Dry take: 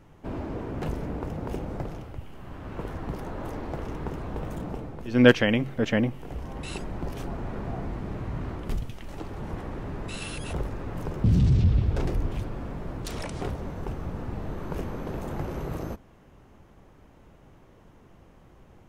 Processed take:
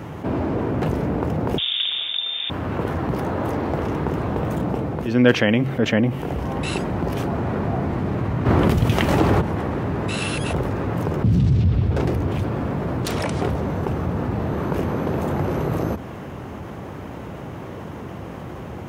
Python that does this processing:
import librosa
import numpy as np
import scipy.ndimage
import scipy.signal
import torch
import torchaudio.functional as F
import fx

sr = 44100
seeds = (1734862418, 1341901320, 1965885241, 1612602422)

y = fx.freq_invert(x, sr, carrier_hz=3600, at=(1.58, 2.5))
y = fx.env_flatten(y, sr, amount_pct=70, at=(8.45, 9.4), fade=0.02)
y = scipy.signal.sosfilt(scipy.signal.butter(4, 74.0, 'highpass', fs=sr, output='sos'), y)
y = fx.peak_eq(y, sr, hz=7600.0, db=-5.5, octaves=2.2)
y = fx.env_flatten(y, sr, amount_pct=50)